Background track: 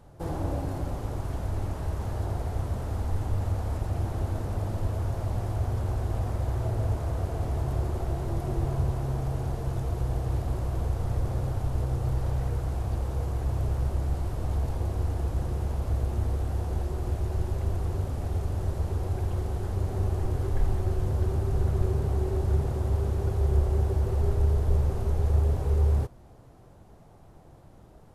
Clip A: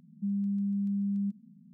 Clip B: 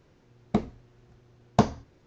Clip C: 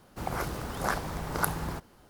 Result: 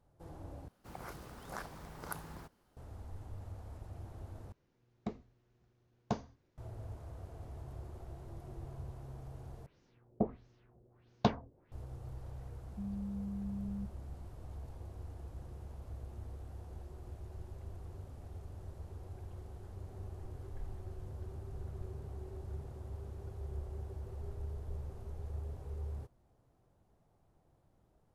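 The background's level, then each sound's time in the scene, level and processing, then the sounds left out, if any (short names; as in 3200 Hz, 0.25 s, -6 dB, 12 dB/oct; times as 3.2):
background track -18.5 dB
0.68 replace with C -14.5 dB
4.52 replace with B -15 dB
9.66 replace with B -9 dB + LFO low-pass sine 1.5 Hz 500–6400 Hz
12.55 add A -10.5 dB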